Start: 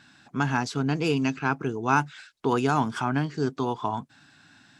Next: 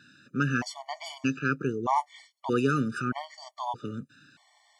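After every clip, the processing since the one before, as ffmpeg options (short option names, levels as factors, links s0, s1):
-af "highpass=95,afftfilt=real='re*gt(sin(2*PI*0.8*pts/sr)*(1-2*mod(floor(b*sr/1024/590),2)),0)':imag='im*gt(sin(2*PI*0.8*pts/sr)*(1-2*mod(floor(b*sr/1024/590),2)),0)':win_size=1024:overlap=0.75"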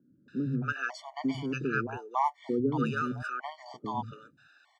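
-filter_complex "[0:a]aemphasis=mode=reproduction:type=75kf,acrossover=split=160|540[s0][s1][s2];[s0]adelay=100[s3];[s2]adelay=280[s4];[s3][s1][s4]amix=inputs=3:normalize=0"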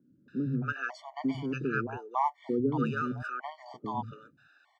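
-af "highshelf=f=3400:g=-8.5"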